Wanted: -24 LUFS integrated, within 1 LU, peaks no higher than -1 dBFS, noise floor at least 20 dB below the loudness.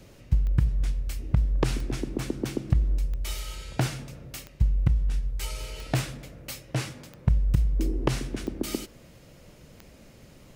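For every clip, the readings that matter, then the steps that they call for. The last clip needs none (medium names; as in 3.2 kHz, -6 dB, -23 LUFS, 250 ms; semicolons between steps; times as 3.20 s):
clicks found 8; loudness -29.0 LUFS; peak level -9.5 dBFS; loudness target -24.0 LUFS
-> de-click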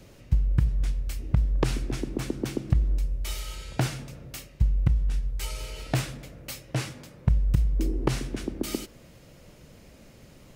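clicks found 0; loudness -29.0 LUFS; peak level -9.5 dBFS; loudness target -24.0 LUFS
-> trim +5 dB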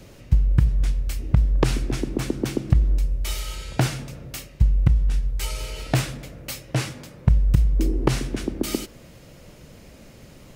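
loudness -24.0 LUFS; peak level -4.5 dBFS; noise floor -47 dBFS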